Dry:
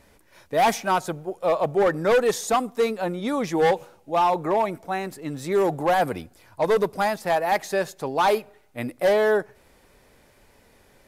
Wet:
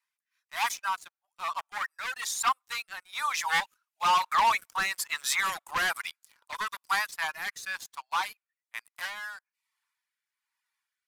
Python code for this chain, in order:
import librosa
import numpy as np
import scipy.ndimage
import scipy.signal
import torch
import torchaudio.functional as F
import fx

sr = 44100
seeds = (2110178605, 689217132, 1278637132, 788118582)

y = fx.doppler_pass(x, sr, speed_mps=10, closest_m=5.6, pass_at_s=4.9)
y = fx.dereverb_blind(y, sr, rt60_s=0.52)
y = scipy.signal.sosfilt(scipy.signal.ellip(4, 1.0, 60, 1000.0, 'highpass', fs=sr, output='sos'), y)
y = fx.leveller(y, sr, passes=3)
y = fx.rotary(y, sr, hz=1.1)
y = y * librosa.db_to_amplitude(5.5)